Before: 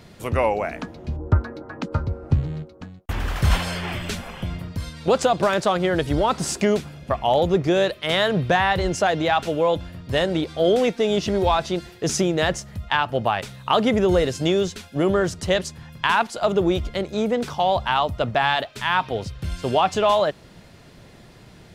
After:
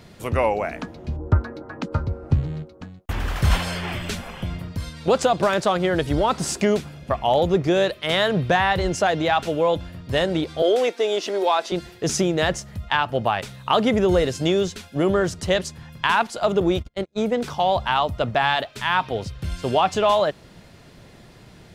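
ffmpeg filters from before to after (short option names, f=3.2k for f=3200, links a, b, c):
-filter_complex "[0:a]asettb=1/sr,asplit=3[a][b][c];[a]atrim=end=10.624[d];[b]atrim=start=10.62:end=11.72,asetpts=PTS-STARTPTS,afade=t=in:d=0.004:c=qsin,afade=t=out:st=1.096:d=0.004:c=qsin,highpass=f=320:w=0.5412,highpass=f=320:w=1.3066[e];[c]atrim=start=11.716[f];[d][e]acrossfade=d=0.004:c1=hsin:c2=qsin[g];[g][f]acrossfade=d=0.004:c1=qsin:c2=hsin,asettb=1/sr,asplit=3[h][i][j];[h]atrim=end=16.604[k];[i]atrim=start=16.6:end=17.44,asetpts=PTS-STARTPTS,afade=t=in:d=0.004:c=qsin,afade=t=out:st=0.836:d=0.004:c=qsin,agate=range=-36dB:threshold=-25dB:ratio=16:release=100:detection=peak[l];[j]atrim=start=17.436[m];[k][l]acrossfade=d=0.004:c1=hsin:c2=qsin[n];[n][m]acrossfade=d=0.004:c1=qsin:c2=hsin"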